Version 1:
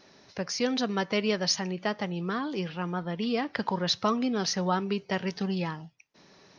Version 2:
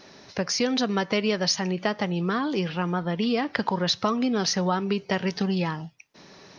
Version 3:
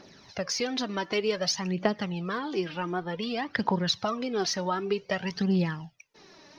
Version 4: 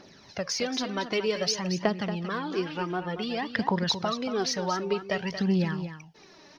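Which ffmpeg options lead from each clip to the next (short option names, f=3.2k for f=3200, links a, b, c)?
-af "acompressor=threshold=-30dB:ratio=2.5,volume=7.5dB"
-af "aphaser=in_gain=1:out_gain=1:delay=3.5:decay=0.58:speed=0.54:type=triangular,volume=-5.5dB"
-af "aecho=1:1:230:0.316"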